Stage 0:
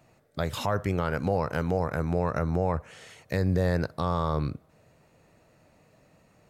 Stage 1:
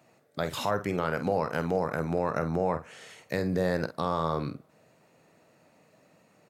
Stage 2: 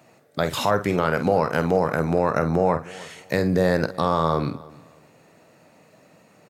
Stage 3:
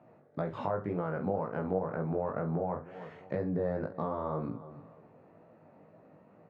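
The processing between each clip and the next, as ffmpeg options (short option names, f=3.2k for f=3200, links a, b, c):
-filter_complex "[0:a]highpass=170,asplit=2[a][b];[b]adelay=49,volume=-11dB[c];[a][c]amix=inputs=2:normalize=0"
-af "aecho=1:1:306|612:0.0841|0.0219,volume=7.5dB"
-af "lowpass=1.1k,acompressor=threshold=-33dB:ratio=2,flanger=delay=17.5:depth=3.8:speed=2"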